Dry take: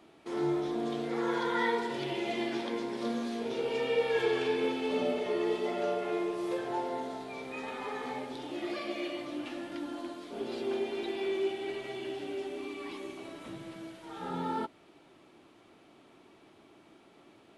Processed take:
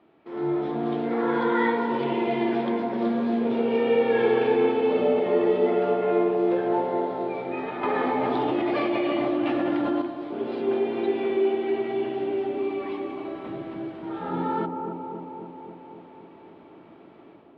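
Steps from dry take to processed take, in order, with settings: low shelf 77 Hz -9 dB; AGC gain up to 8.5 dB; air absorption 430 m; analogue delay 0.27 s, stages 2048, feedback 69%, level -5 dB; 7.83–10.02 fast leveller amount 100%

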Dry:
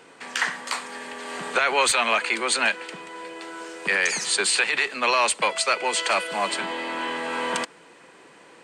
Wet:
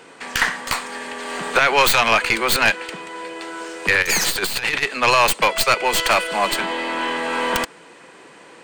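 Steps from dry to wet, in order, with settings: tracing distortion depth 0.098 ms; 4.02–4.83 negative-ratio compressor -26 dBFS, ratio -0.5; gain +5.5 dB

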